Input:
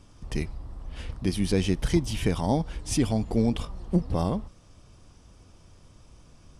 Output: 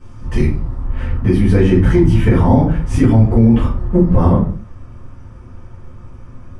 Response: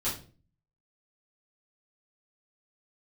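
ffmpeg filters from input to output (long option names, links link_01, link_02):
-filter_complex "[0:a]asetnsamples=nb_out_samples=441:pad=0,asendcmd='0.82 highshelf g -13.5',highshelf=frequency=2700:width_type=q:width=1.5:gain=-7[link_01];[1:a]atrim=start_sample=2205,afade=type=out:start_time=0.33:duration=0.01,atrim=end_sample=14994[link_02];[link_01][link_02]afir=irnorm=-1:irlink=0,alimiter=level_in=7dB:limit=-1dB:release=50:level=0:latency=1,volume=-1dB"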